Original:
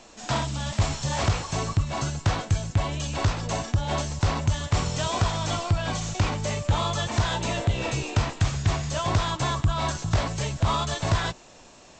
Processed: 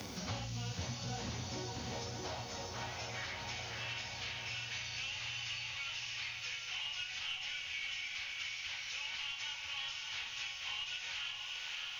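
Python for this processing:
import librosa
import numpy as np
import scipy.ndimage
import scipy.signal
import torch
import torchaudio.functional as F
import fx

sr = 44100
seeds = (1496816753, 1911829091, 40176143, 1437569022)

p1 = fx.pitch_bins(x, sr, semitones=-3.0)
p2 = scipy.signal.sosfilt(scipy.signal.butter(4, 50.0, 'highpass', fs=sr, output='sos'), p1)
p3 = fx.peak_eq(p2, sr, hz=230.0, db=6.5, octaves=0.41)
p4 = fx.notch(p3, sr, hz=600.0, q=12.0)
p5 = fx.rev_schroeder(p4, sr, rt60_s=0.47, comb_ms=26, drr_db=12.5)
p6 = fx.filter_sweep_highpass(p5, sr, from_hz=76.0, to_hz=2600.0, start_s=0.42, end_s=3.58, q=2.6)
p7 = 10.0 ** (-23.0 / 20.0) * np.tanh(p6 / 10.0 ** (-23.0 / 20.0))
p8 = p6 + F.gain(torch.from_numpy(p7), -10.0).numpy()
p9 = fx.comb_fb(p8, sr, f0_hz=750.0, decay_s=0.44, harmonics='all', damping=0.0, mix_pct=70)
p10 = fx.room_flutter(p9, sr, wall_m=11.2, rt60_s=0.28)
p11 = fx.quant_dither(p10, sr, seeds[0], bits=12, dither='none')
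p12 = p11 + fx.echo_diffused(p11, sr, ms=602, feedback_pct=45, wet_db=-5.0, dry=0)
p13 = fx.band_squash(p12, sr, depth_pct=100)
y = F.gain(torch.from_numpy(p13), -4.5).numpy()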